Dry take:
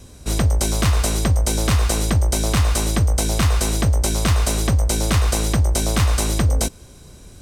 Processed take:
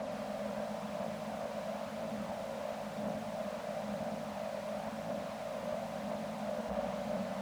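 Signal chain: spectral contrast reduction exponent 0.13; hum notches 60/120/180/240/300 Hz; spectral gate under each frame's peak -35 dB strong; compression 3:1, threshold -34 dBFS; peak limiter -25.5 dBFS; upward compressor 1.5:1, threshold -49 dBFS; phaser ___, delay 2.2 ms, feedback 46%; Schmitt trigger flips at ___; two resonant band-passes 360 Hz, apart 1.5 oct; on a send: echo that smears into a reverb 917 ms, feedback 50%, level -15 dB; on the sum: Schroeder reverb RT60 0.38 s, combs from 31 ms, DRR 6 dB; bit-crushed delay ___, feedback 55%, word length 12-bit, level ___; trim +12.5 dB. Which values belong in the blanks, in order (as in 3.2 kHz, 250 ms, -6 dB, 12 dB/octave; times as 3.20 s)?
0.98 Hz, -51 dBFS, 116 ms, -7.5 dB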